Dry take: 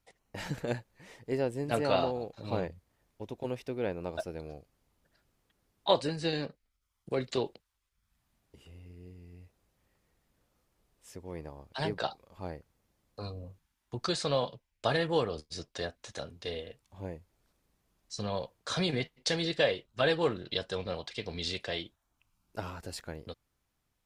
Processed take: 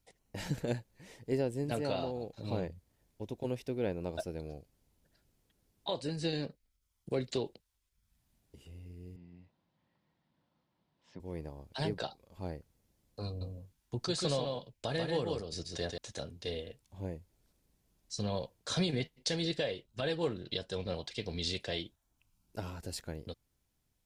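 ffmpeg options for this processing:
ffmpeg -i in.wav -filter_complex "[0:a]asettb=1/sr,asplit=3[link_01][link_02][link_03];[link_01]atrim=end=9.164[link_04];[link_02]atrim=start=9.16:end=11.2,asetpts=PTS-STARTPTS,afade=type=in:duration=0.004:curve=qsin,afade=type=out:start_time=2.036:duration=0.004:curve=qsin,highpass=160,equalizer=frequency=160:width_type=q:width=4:gain=5,equalizer=frequency=430:width_type=q:width=4:gain=-10,equalizer=frequency=970:width_type=q:width=4:gain=7,equalizer=frequency=2500:width_type=q:width=4:gain=-4,lowpass=frequency=4000:width=0.5412,lowpass=frequency=4000:width=1.3066[link_05];[link_03]atrim=start=11.196[link_06];[link_04][link_05]acrossfade=duration=0.004:curve1=hsin:curve2=qsin[link_07];[link_07][link_06]acrossfade=duration=0.004:curve1=qsin:curve2=hsin,asettb=1/sr,asplit=3[link_08][link_09][link_10];[link_08]atrim=end=13.274[link_11];[link_09]atrim=start=13.27:end=15.98,asetpts=PTS-STARTPTS,afade=type=in:duration=0.004:curve=qsin,afade=type=out:start_time=2.706:duration=0.004:curve=qsin,aecho=1:1:139:0.596,atrim=end_sample=119511[link_12];[link_10]atrim=start=15.976[link_13];[link_11][link_12]acrossfade=duration=0.004:curve1=hsin:curve2=qsin[link_14];[link_14][link_13]acrossfade=duration=0.004:curve1=qsin:curve2=hsin,alimiter=limit=-21dB:level=0:latency=1:release=345,equalizer=frequency=1300:width=0.47:gain=-7,bandreject=frequency=1200:width=15,volume=2dB" out.wav

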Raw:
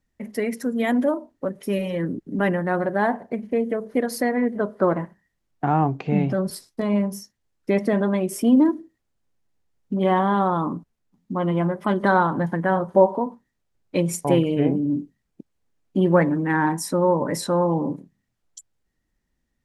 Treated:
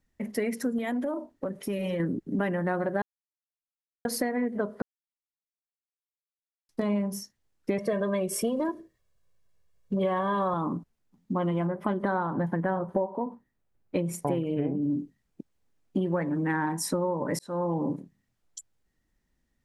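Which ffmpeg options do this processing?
ffmpeg -i in.wav -filter_complex "[0:a]asettb=1/sr,asplit=3[link_01][link_02][link_03];[link_01]atrim=end=0.784[link_04];[link_02]atrim=start=0.78:end=2,asetpts=PTS-STARTPTS,afade=type=in:duration=0.004:curve=qsin,afade=type=out:start_time=1.216:duration=0.004:curve=qsin,acompressor=threshold=-26dB:ratio=6:attack=3.2:release=140:knee=1:detection=peak[link_05];[link_03]atrim=start=1.996[link_06];[link_04][link_05]acrossfade=duration=0.004:curve1=hsin:curve2=qsin[link_07];[link_07][link_06]acrossfade=duration=0.004:curve1=qsin:curve2=hsin,asettb=1/sr,asplit=3[link_08][link_09][link_10];[link_08]atrim=end=7.784[link_11];[link_09]atrim=start=7.78:end=10.54,asetpts=PTS-STARTPTS,afade=type=in:duration=0.004:curve=qsin,afade=type=out:start_time=2.756:duration=0.004:curve=qsin,aecho=1:1:1.8:0.85,atrim=end_sample=121716[link_12];[link_10]atrim=start=10.536[link_13];[link_11][link_12]acrossfade=duration=0.004:curve1=hsin:curve2=qsin[link_14];[link_14][link_13]acrossfade=duration=0.004:curve1=qsin:curve2=hsin,asettb=1/sr,asplit=3[link_15][link_16][link_17];[link_15]atrim=end=11.674[link_18];[link_16]atrim=start=11.67:end=14.82,asetpts=PTS-STARTPTS,afade=type=in:duration=0.004:curve=qsin,afade=type=out:start_time=3.146:duration=0.004:curve=qsin,equalizer=frequency=6000:width=0.44:gain=-8.5[link_19];[link_17]atrim=start=14.816[link_20];[link_18][link_19]acrossfade=duration=0.004:curve1=hsin:curve2=qsin[link_21];[link_21][link_20]acrossfade=duration=0.004:curve1=qsin:curve2=hsin,asplit=6[link_22][link_23][link_24][link_25][link_26][link_27];[link_22]atrim=end=3.02,asetpts=PTS-STARTPTS,afade=type=out:start_time=3.016:duration=0.004:curve=hsin[link_28];[link_23]atrim=start=3.02:end=4.05,asetpts=PTS-STARTPTS,volume=0[link_29];[link_24]atrim=start=4.05:end=4.82,asetpts=PTS-STARTPTS,afade=type=in:duration=0.004:curve=hsin,afade=type=out:start_time=0.766:duration=0.004:curve=hsin[link_30];[link_25]atrim=start=4.82:end=6.69,asetpts=PTS-STARTPTS,volume=0[link_31];[link_26]atrim=start=6.69:end=17.39,asetpts=PTS-STARTPTS,afade=type=in:duration=0.004:curve=hsin,afade=type=out:start_time=10.696:duration=0.004:curve=hsin[link_32];[link_27]atrim=start=17.39,asetpts=PTS-STARTPTS,afade=type=in:duration=0.53[link_33];[link_28][link_29][link_30][link_31][link_32][link_33]concat=n=6:v=0:a=1,acompressor=threshold=-24dB:ratio=10" out.wav

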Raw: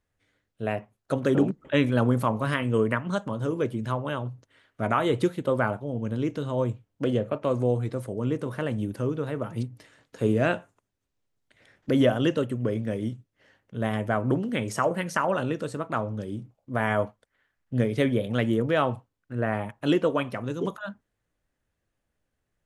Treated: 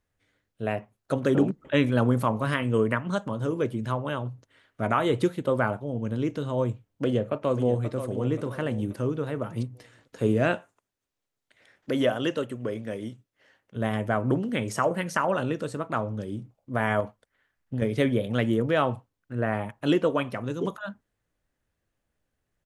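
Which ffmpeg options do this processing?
ffmpeg -i in.wav -filter_complex "[0:a]asplit=2[link_01][link_02];[link_02]afade=type=in:start_time=7.04:duration=0.01,afade=type=out:start_time=7.95:duration=0.01,aecho=0:1:530|1060|1590|2120:0.316228|0.126491|0.0505964|0.0202386[link_03];[link_01][link_03]amix=inputs=2:normalize=0,asettb=1/sr,asplit=3[link_04][link_05][link_06];[link_04]atrim=end=10.554[link_07];[link_05]atrim=start=10.55:end=13.76,asetpts=PTS-STARTPTS,afade=type=in:duration=0.004:curve=qsin,afade=type=out:start_time=3.206:duration=0.004:curve=qsin,lowshelf=frequency=250:gain=-10.5[link_08];[link_06]atrim=start=13.756[link_09];[link_07][link_08]acrossfade=duration=0.004:curve1=hsin:curve2=qsin[link_10];[link_10][link_09]acrossfade=duration=0.004:curve1=qsin:curve2=hsin,asettb=1/sr,asplit=3[link_11][link_12][link_13];[link_11]atrim=end=17.004[link_14];[link_12]atrim=start=17:end=17.82,asetpts=PTS-STARTPTS,afade=type=in:duration=0.004:curve=qsin,afade=type=out:start_time=0.816:duration=0.004:curve=qsin,acompressor=threshold=-24dB:ratio=6:attack=3.2:release=140:knee=1:detection=peak[link_15];[link_13]atrim=start=17.816[link_16];[link_14][link_15]acrossfade=duration=0.004:curve1=hsin:curve2=qsin[link_17];[link_17][link_16]acrossfade=duration=0.004:curve1=qsin:curve2=hsin" out.wav

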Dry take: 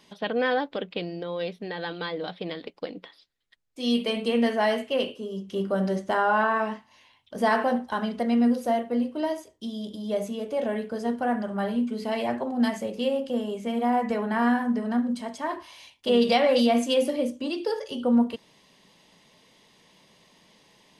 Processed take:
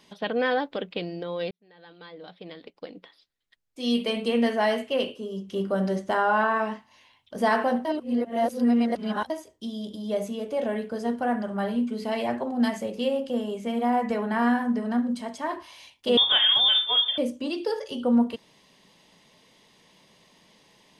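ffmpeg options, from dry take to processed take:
ffmpeg -i in.wav -filter_complex "[0:a]asettb=1/sr,asplit=3[link_01][link_02][link_03];[link_01]atrim=end=16.174[link_04];[link_02]atrim=start=16.17:end=17.18,asetpts=PTS-STARTPTS,afade=type=in:duration=0.004:curve=qsin,afade=type=out:start_time=1.006:duration=0.004:curve=qsin,lowpass=frequency=3200:width_type=q:width=0.5098,lowpass=frequency=3200:width_type=q:width=0.6013,lowpass=frequency=3200:width_type=q:width=0.9,lowpass=frequency=3200:width_type=q:width=2.563,afreqshift=-3800[link_05];[link_03]atrim=start=17.176[link_06];[link_04][link_05]acrossfade=duration=0.004:curve1=hsin:curve2=qsin[link_07];[link_07][link_06]acrossfade=duration=0.004:curve1=qsin:curve2=hsin,asplit=4[link_08][link_09][link_10][link_11];[link_08]atrim=end=1.51,asetpts=PTS-STARTPTS,afade=type=out:start_time=1.506:duration=0.004:curve=hsin[link_12];[link_09]atrim=start=1.51:end=7.852,asetpts=PTS-STARTPTS,afade=type=in:duration=2.53[link_13];[link_10]atrim=start=7.848:end=9.302,asetpts=PTS-STARTPTS,areverse[link_14];[link_11]atrim=start=9.298[link_15];[link_12][link_13]concat=n=2:v=0:a=1[link_16];[link_16][link_14]acrossfade=duration=0.004:curve1=hsin:curve2=hsin[link_17];[link_17][link_15]acrossfade=duration=0.004:curve1=hsin:curve2=hsin" out.wav

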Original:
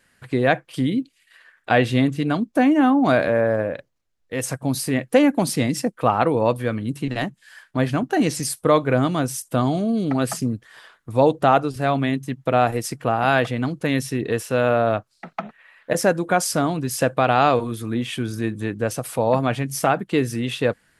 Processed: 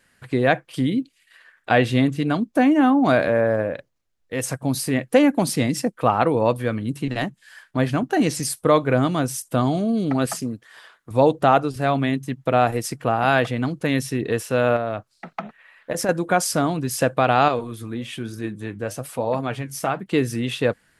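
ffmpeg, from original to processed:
ffmpeg -i in.wav -filter_complex "[0:a]asettb=1/sr,asplit=3[link_01][link_02][link_03];[link_01]atrim=end=10.264[link_04];[link_02]atrim=start=10.26:end=11.11,asetpts=PTS-STARTPTS,afade=type=in:duration=0.004:curve=qsin,afade=type=out:start_time=0.846:duration=0.004:curve=qsin,lowshelf=frequency=170:gain=-11[link_05];[link_03]atrim=start=11.106[link_06];[link_04][link_05]acrossfade=duration=0.004:curve1=hsin:curve2=qsin[link_07];[link_07][link_06]acrossfade=duration=0.004:curve1=qsin:curve2=hsin,asettb=1/sr,asplit=3[link_08][link_09][link_10];[link_08]atrim=end=14.764[link_11];[link_09]atrim=start=14.76:end=16.09,asetpts=PTS-STARTPTS,afade=type=in:duration=0.004:curve=qsin,afade=type=out:start_time=1.326:duration=0.004:curve=qsin,acompressor=threshold=-20dB:ratio=6:attack=3.2:release=140:knee=1:detection=peak[link_12];[link_10]atrim=start=16.086[link_13];[link_11][link_12]acrossfade=duration=0.004:curve1=hsin:curve2=qsin[link_14];[link_14][link_13]acrossfade=duration=0.004:curve1=qsin:curve2=hsin,asettb=1/sr,asplit=3[link_15][link_16][link_17];[link_15]atrim=end=17.484[link_18];[link_16]atrim=start=17.48:end=20.06,asetpts=PTS-STARTPTS,afade=type=in:duration=0.004:curve=qsin,afade=type=out:start_time=2.576:duration=0.004:curve=qsin,flanger=delay=1.7:depth=9.9:regen=66:speed=1.1:shape=triangular[link_19];[link_17]atrim=start=20.056[link_20];[link_18][link_19]acrossfade=duration=0.004:curve1=hsin:curve2=qsin[link_21];[link_21][link_20]acrossfade=duration=0.004:curve1=qsin:curve2=hsin" out.wav

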